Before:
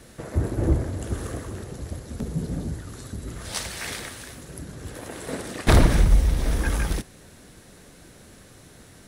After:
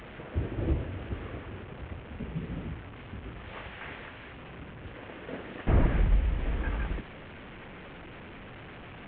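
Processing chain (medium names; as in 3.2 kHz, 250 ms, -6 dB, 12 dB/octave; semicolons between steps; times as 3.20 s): one-bit delta coder 16 kbps, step -31.5 dBFS; trim -7.5 dB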